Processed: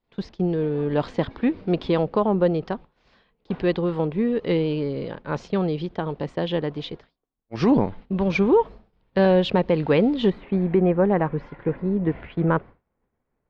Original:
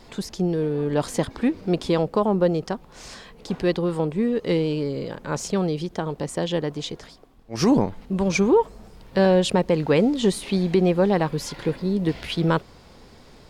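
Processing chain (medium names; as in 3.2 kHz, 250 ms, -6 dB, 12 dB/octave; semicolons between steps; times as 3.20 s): low-pass 3.8 kHz 24 dB/octave, from 10.30 s 2.1 kHz; expander -31 dBFS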